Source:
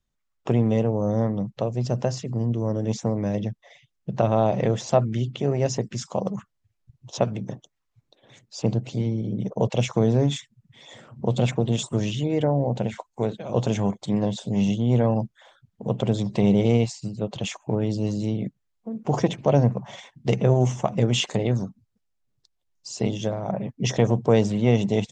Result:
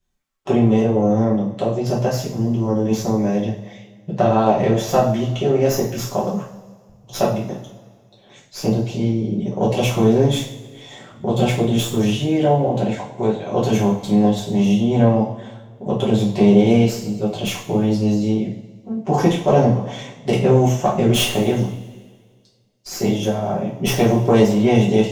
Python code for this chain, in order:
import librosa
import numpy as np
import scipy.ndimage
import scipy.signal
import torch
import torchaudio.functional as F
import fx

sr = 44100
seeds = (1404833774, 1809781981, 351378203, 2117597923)

y = fx.tracing_dist(x, sr, depth_ms=0.1)
y = fx.rev_double_slope(y, sr, seeds[0], early_s=0.45, late_s=1.8, knee_db=-18, drr_db=-7.0)
y = F.gain(torch.from_numpy(y), -1.0).numpy()